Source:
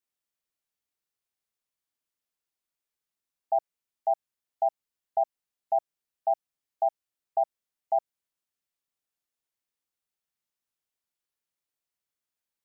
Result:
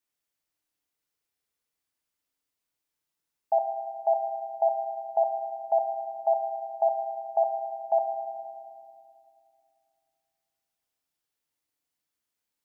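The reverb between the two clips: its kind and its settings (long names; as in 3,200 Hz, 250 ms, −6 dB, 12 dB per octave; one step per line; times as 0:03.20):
feedback delay network reverb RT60 2.4 s, low-frequency decay 1.45×, high-frequency decay 0.9×, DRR 3 dB
level +2 dB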